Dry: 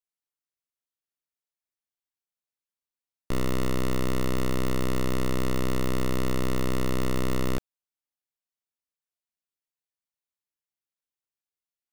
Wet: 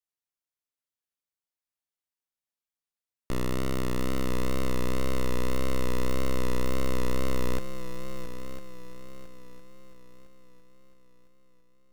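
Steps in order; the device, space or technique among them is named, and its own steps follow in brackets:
multi-head tape echo (echo machine with several playback heads 335 ms, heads second and third, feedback 46%, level −11.5 dB; tape wow and flutter)
level −2.5 dB

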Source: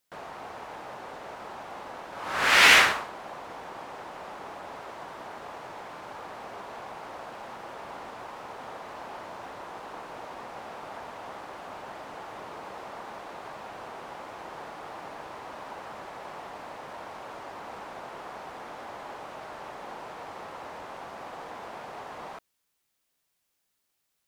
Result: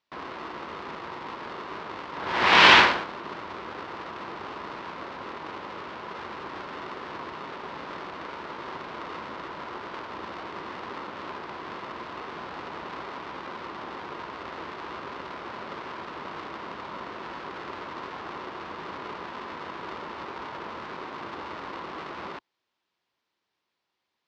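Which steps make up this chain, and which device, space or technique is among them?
ring modulator pedal into a guitar cabinet (ring modulator with a square carrier 400 Hz; loudspeaker in its box 84–4,600 Hz, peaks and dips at 120 Hz −6 dB, 360 Hz +5 dB, 980 Hz +7 dB)
level +1.5 dB

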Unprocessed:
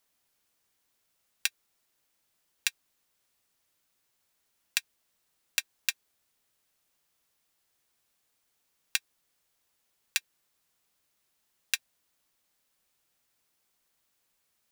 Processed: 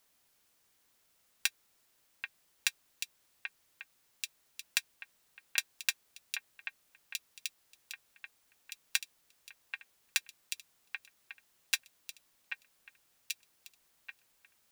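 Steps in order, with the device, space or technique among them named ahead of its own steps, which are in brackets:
delay that swaps between a low-pass and a high-pass 785 ms, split 2,400 Hz, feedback 64%, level −9 dB
soft clipper into limiter (soft clipping −4 dBFS, distortion −18 dB; brickwall limiter −11 dBFS, peak gain reduction 5.5 dB)
level +4 dB

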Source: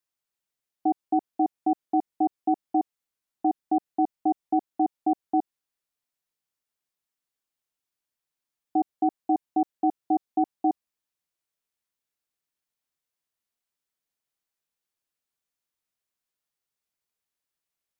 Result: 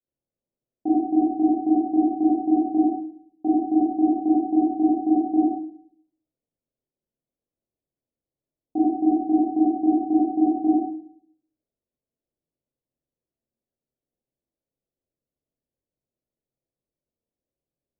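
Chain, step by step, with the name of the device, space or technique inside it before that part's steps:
next room (low-pass filter 580 Hz 24 dB per octave; convolution reverb RT60 0.55 s, pre-delay 22 ms, DRR −9.5 dB)

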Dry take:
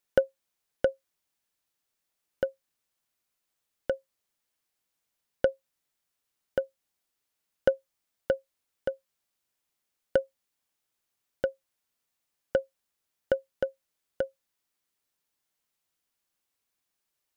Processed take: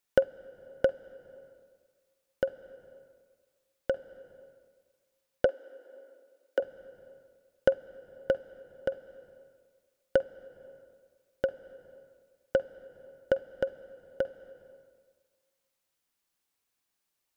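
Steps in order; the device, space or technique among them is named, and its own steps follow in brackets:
compressed reverb return (on a send at −7 dB: convolution reverb RT60 1.6 s, pre-delay 46 ms + downward compressor 6 to 1, threshold −39 dBFS, peak gain reduction 15.5 dB)
0:05.45–0:06.60: on the sum: Butterworth high-pass 250 Hz 72 dB per octave

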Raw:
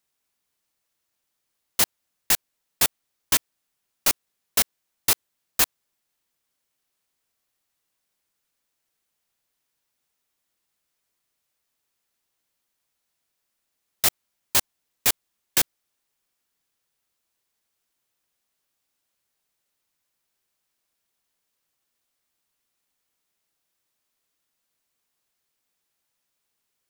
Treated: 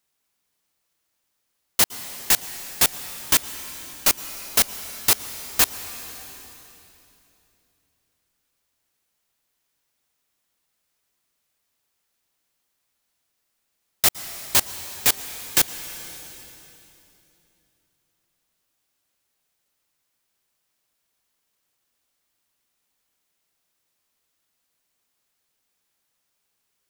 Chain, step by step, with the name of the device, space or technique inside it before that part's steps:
saturated reverb return (on a send at −7 dB: convolution reverb RT60 2.9 s, pre-delay 108 ms + soft clipping −27.5 dBFS, distortion −9 dB)
on the sum: level +2.5 dB

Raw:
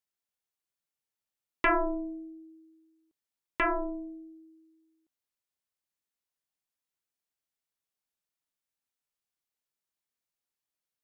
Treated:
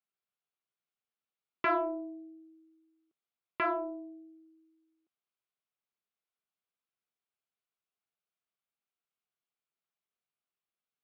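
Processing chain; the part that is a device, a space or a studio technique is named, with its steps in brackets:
overdrive pedal into a guitar cabinet (mid-hump overdrive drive 7 dB, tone 1,100 Hz, clips at −18 dBFS; loudspeaker in its box 110–4,100 Hz, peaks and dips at 290 Hz −10 dB, 550 Hz −7 dB, 910 Hz −8 dB, 1,800 Hz −8 dB)
level +3.5 dB

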